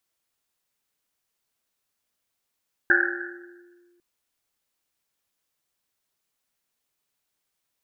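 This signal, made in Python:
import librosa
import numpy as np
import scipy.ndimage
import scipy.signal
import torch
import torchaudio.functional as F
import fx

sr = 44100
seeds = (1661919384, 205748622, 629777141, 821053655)

y = fx.risset_drum(sr, seeds[0], length_s=1.1, hz=350.0, decay_s=1.89, noise_hz=1600.0, noise_width_hz=330.0, noise_pct=70)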